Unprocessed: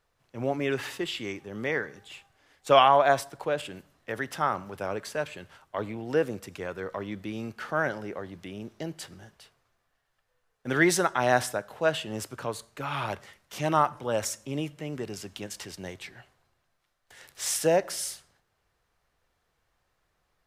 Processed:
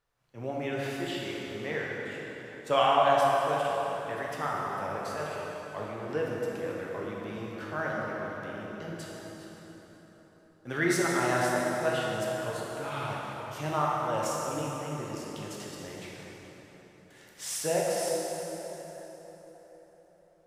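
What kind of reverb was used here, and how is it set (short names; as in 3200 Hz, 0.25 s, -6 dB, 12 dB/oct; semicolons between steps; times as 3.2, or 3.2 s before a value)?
plate-style reverb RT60 4.5 s, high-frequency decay 0.65×, DRR -4.5 dB; gain -8 dB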